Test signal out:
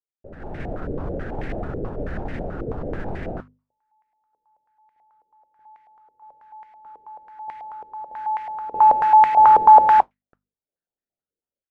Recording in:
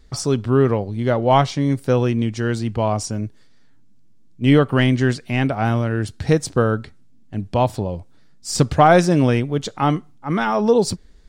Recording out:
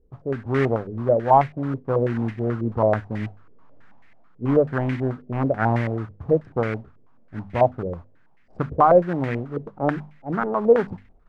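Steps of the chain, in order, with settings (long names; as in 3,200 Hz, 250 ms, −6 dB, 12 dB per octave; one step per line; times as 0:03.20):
adaptive Wiener filter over 41 samples
automatic gain control gain up to 15 dB
mains-hum notches 50/100/150/200/250 Hz
noise that follows the level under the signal 11 dB
low-pass on a step sequencer 9.2 Hz 460–2,000 Hz
level −10.5 dB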